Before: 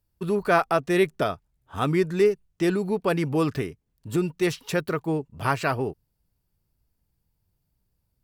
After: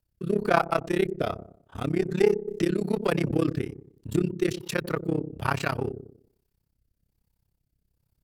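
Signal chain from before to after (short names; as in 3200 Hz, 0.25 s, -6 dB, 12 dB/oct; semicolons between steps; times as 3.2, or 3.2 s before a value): in parallel at -3.5 dB: one-sided clip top -28 dBFS; on the sum: dark delay 96 ms, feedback 37%, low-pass 440 Hz, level -9 dB; AM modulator 33 Hz, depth 95%; rotary speaker horn 1.2 Hz; 2.47–3.31 three-band squash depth 70%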